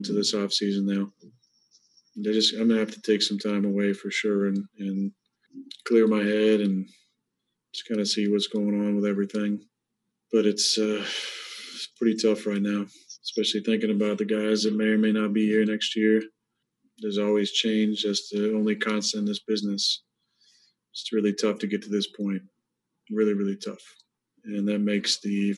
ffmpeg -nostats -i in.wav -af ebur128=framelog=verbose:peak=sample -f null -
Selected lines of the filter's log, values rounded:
Integrated loudness:
  I:         -25.4 LUFS
  Threshold: -36.2 LUFS
Loudness range:
  LRA:         4.0 LU
  Threshold: -46.3 LUFS
  LRA low:   -28.7 LUFS
  LRA high:  -24.7 LUFS
Sample peak:
  Peak:       -8.8 dBFS